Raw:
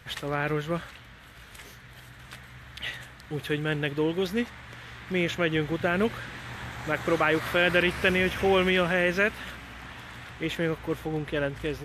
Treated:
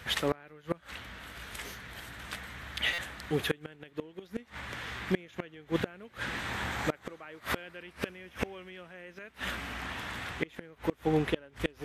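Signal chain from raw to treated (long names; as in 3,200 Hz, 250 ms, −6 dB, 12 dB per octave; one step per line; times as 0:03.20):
high-pass filter 44 Hz 6 dB per octave
parametric band 130 Hz −14.5 dB 0.21 octaves
gate with flip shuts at −19 dBFS, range −28 dB
buffer that repeats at 0:02.93, samples 256, times 8
level +4.5 dB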